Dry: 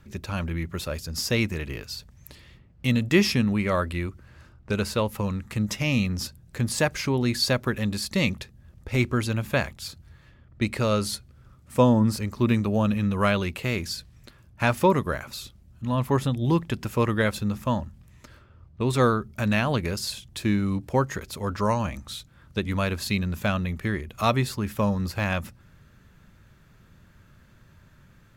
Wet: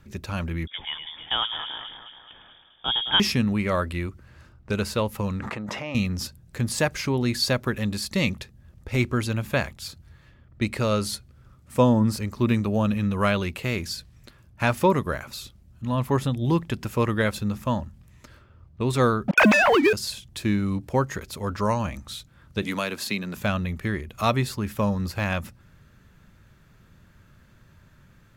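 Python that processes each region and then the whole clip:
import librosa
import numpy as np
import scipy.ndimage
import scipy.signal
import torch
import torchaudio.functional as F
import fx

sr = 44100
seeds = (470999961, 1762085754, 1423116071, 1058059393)

y = fx.chain(x, sr, fx.highpass(hz=250.0, slope=6),
    fx.echo_alternate(ms=107, hz=1600.0, feedback_pct=74, wet_db=-7.5),
    fx.freq_invert(carrier_hz=3500), at=(0.67, 3.2))
y = fx.chain(y, sr, fx.bandpass_q(hz=820.0, q=1.1),
    fx.env_flatten(amount_pct=100), at=(5.4, 5.95))
y = fx.chain(y, sr, fx.sine_speech(),
    fx.leveller(passes=3),
    fx.band_squash(depth_pct=100), at=(19.28, 19.93))
y = fx.chain(y, sr, fx.bessel_highpass(hz=230.0, order=4),
    fx.band_squash(depth_pct=70), at=(22.62, 23.37))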